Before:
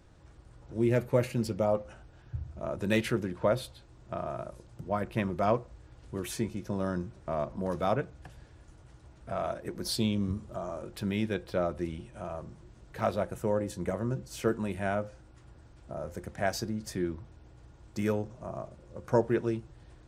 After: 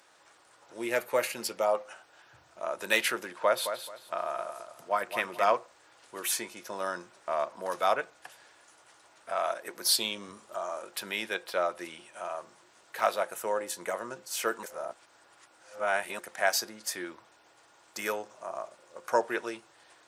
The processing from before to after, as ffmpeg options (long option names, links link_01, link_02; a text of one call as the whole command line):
ffmpeg -i in.wav -filter_complex "[0:a]asettb=1/sr,asplit=3[link_01][link_02][link_03];[link_01]atrim=end=3.374[link_04];[link_02]atrim=start=3.37:end=5.54,asetpts=PTS-STARTPTS,afade=type=in:duration=0.004:curve=qsin,afade=type=out:start_time=2.166:duration=0.004:curve=qsin,aecho=1:1:216|432|648:0.355|0.0887|0.0222,atrim=end_sample=95697[link_05];[link_03]atrim=start=5.536[link_06];[link_04][link_05]acrossfade=duration=0.004:curve1=hsin:curve2=qsin[link_07];[link_07][link_06]acrossfade=duration=0.004:curve1=qsin:curve2=hsin,asplit=3[link_08][link_09][link_10];[link_08]atrim=end=14.632[link_11];[link_09]atrim=start=14.628:end=16.192,asetpts=PTS-STARTPTS,areverse[link_12];[link_10]atrim=start=16.188[link_13];[link_11][link_12]acrossfade=duration=0.004:curve1=hsin:curve2=hsin[link_14];[link_14][link_13]acrossfade=duration=0.004:curve1=hsin:curve2=hsin,highpass=830,equalizer=frequency=12000:width=1.1:gain=6,volume=7.5dB" out.wav